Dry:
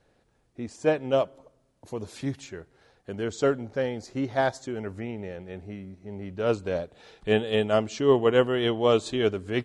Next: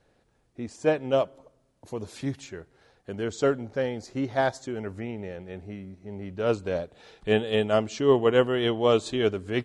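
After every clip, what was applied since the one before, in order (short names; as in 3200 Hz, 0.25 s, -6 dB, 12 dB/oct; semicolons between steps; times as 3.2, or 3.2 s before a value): nothing audible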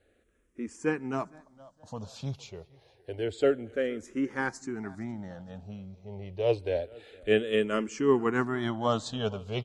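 feedback echo 0.463 s, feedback 33%, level -24 dB; endless phaser -0.28 Hz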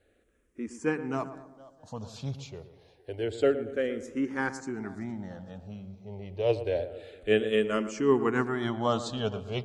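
darkening echo 0.115 s, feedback 50%, low-pass 1400 Hz, level -11.5 dB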